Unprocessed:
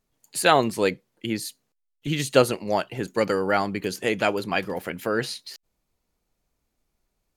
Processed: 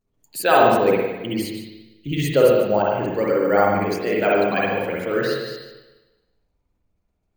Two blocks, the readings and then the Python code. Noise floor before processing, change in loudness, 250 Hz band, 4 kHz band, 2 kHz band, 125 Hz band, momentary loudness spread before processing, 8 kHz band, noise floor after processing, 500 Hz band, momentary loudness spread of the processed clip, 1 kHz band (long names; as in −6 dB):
−78 dBFS, +5.0 dB, +4.0 dB, −1.5 dB, +2.5 dB, +3.5 dB, 13 LU, can't be measured, −72 dBFS, +6.5 dB, 14 LU, +5.5 dB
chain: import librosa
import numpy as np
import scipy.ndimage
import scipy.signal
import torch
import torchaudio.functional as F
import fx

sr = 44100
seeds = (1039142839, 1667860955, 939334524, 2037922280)

p1 = fx.envelope_sharpen(x, sr, power=1.5)
p2 = fx.rev_spring(p1, sr, rt60_s=1.1, pass_ms=(49, 59), chirp_ms=55, drr_db=-4.5)
p3 = np.repeat(scipy.signal.resample_poly(p2, 1, 2), 2)[:len(p2)]
p4 = p3 + fx.echo_single(p3, sr, ms=149, db=-11.5, dry=0)
y = F.gain(torch.from_numpy(p4), -1.0).numpy()